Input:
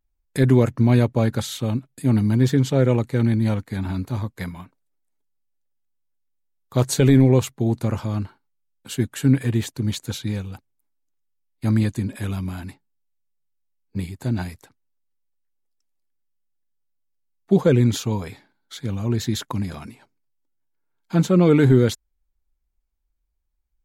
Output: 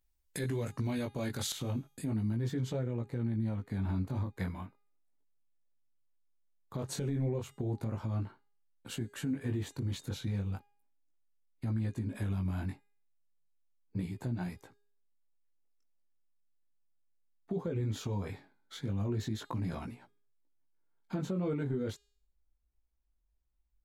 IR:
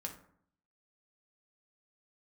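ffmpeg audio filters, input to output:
-af "flanger=delay=16.5:depth=4.7:speed=0.35,acompressor=threshold=-28dB:ratio=4,asetnsamples=n=441:p=0,asendcmd='1.52 highshelf g -4;2.79 highshelf g -9',highshelf=f=2.3k:g=8.5,bandreject=f=409:t=h:w=4,bandreject=f=818:t=h:w=4,bandreject=f=1.227k:t=h:w=4,bandreject=f=1.636k:t=h:w=4,bandreject=f=2.045k:t=h:w=4,bandreject=f=2.454k:t=h:w=4,bandreject=f=2.863k:t=h:w=4,bandreject=f=3.272k:t=h:w=4,bandreject=f=3.681k:t=h:w=4,bandreject=f=4.09k:t=h:w=4,bandreject=f=4.499k:t=h:w=4,bandreject=f=4.908k:t=h:w=4,bandreject=f=5.317k:t=h:w=4,bandreject=f=5.726k:t=h:w=4,bandreject=f=6.135k:t=h:w=4,bandreject=f=6.544k:t=h:w=4,bandreject=f=6.953k:t=h:w=4,bandreject=f=7.362k:t=h:w=4,bandreject=f=7.771k:t=h:w=4,bandreject=f=8.18k:t=h:w=4,bandreject=f=8.589k:t=h:w=4,bandreject=f=8.998k:t=h:w=4,bandreject=f=9.407k:t=h:w=4,bandreject=f=9.816k:t=h:w=4,bandreject=f=10.225k:t=h:w=4,bandreject=f=10.634k:t=h:w=4,bandreject=f=11.043k:t=h:w=4,bandreject=f=11.452k:t=h:w=4,bandreject=f=11.861k:t=h:w=4,bandreject=f=12.27k:t=h:w=4,bandreject=f=12.679k:t=h:w=4,alimiter=level_in=2dB:limit=-24dB:level=0:latency=1:release=132,volume=-2dB"

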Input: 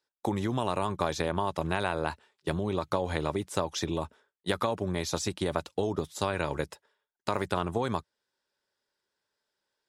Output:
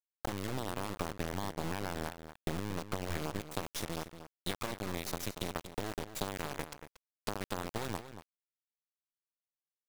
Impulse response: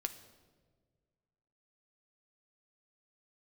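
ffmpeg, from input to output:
-filter_complex "[0:a]asettb=1/sr,asplit=3[a][b][c];[a]atrim=end=1.004[d];[b]atrim=start=1:end=3.4,asetpts=PTS-STARTPTS,afade=t=in:d=0.004:c=qsin,afade=t=out:st=2.396:d=0.004:c=qsin,bass=f=250:g=9,treble=f=4k:g=-14[e];[c]atrim=start=3.396[f];[d][e]acrossfade=d=0.004:c1=hsin:c2=qsin[g];[g][f]acrossfade=d=0.004:c1=qsin:c2=hsin,acompressor=threshold=-39dB:ratio=6,acrusher=bits=4:dc=4:mix=0:aa=0.000001,asplit=2[h][i];[i]adelay=233.2,volume=-11dB,highshelf=f=4k:g=-5.25[j];[h][j]amix=inputs=2:normalize=0,volume=6dB"

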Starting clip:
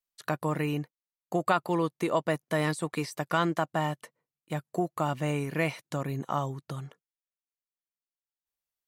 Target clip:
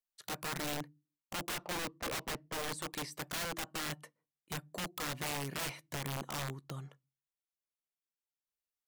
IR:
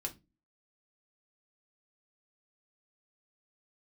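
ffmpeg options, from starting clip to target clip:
-filter_complex "[0:a]asettb=1/sr,asplit=3[a][b][c];[a]atrim=end=1.414[d];[b]atrim=start=1.41:end=2.72,asetpts=PTS-STARTPTS,afade=t=in:d=0.004:c=qsin,afade=t=out:st=1.306:d=0.004:c=qsin,adynamicsmooth=sensitivity=4.5:basefreq=700[e];[c]atrim=start=2.716[f];[d][e]acrossfade=d=0.004:c1=hsin:c2=qsin[g];[g][f]acrossfade=d=0.004:c1=qsin:c2=hsin,asplit=2[h][i];[1:a]atrim=start_sample=2205[j];[i][j]afir=irnorm=-1:irlink=0,volume=-16dB[k];[h][k]amix=inputs=2:normalize=0,aeval=exprs='(mod(18.8*val(0)+1,2)-1)/18.8':c=same,volume=-7dB"

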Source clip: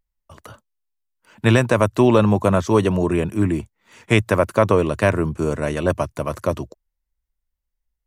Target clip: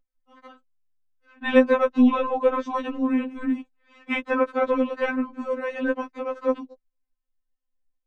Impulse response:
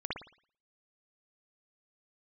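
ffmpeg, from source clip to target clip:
-filter_complex "[0:a]lowpass=4.3k,acrossover=split=190|2300[a][b][c];[a]asoftclip=type=tanh:threshold=-24dB[d];[d][b][c]amix=inputs=3:normalize=0,aemphasis=mode=reproduction:type=75kf,afftfilt=real='re*3.46*eq(mod(b,12),0)':imag='im*3.46*eq(mod(b,12),0)':win_size=2048:overlap=0.75"

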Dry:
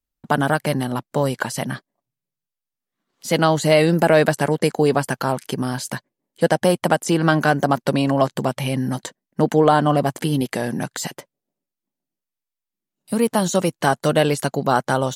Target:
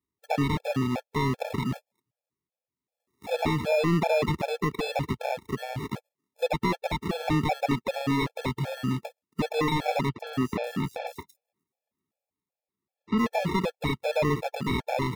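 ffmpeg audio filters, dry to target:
-filter_complex "[0:a]acrusher=samples=29:mix=1:aa=0.000001,highpass=f=63:w=0.5412,highpass=f=63:w=1.3066,equalizer=f=13k:t=o:w=1.3:g=3,dynaudnorm=f=200:g=11:m=4dB,asoftclip=type=tanh:threshold=-16dB,acrossover=split=4100[a][b];[b]acompressor=threshold=-51dB:ratio=4:attack=1:release=60[c];[a][c]amix=inputs=2:normalize=0,highshelf=f=5.1k:g=7,asettb=1/sr,asplit=3[d][e][f];[d]atrim=end=10.094[g];[e]atrim=start=10.09:end=13.18,asetpts=PTS-STARTPTS,afade=t=in:d=0.004:c=qsin,afade=t=out:st=3.086:d=0.004:c=qsin,acrossover=split=5300[h][i];[i]adelay=110[j];[h][j]amix=inputs=2:normalize=0,atrim=end_sample=136269[k];[f]atrim=start=13.176[l];[g][k]acrossfade=d=0.004:c1=hsin:c2=qsin[m];[m][l]acrossfade=d=0.004:c1=qsin:c2=hsin,afftfilt=real='re*gt(sin(2*PI*2.6*pts/sr)*(1-2*mod(floor(b*sr/1024/450),2)),0)':imag='im*gt(sin(2*PI*2.6*pts/sr)*(1-2*mod(floor(b*sr/1024/450),2)),0)':win_size=1024:overlap=0.75"

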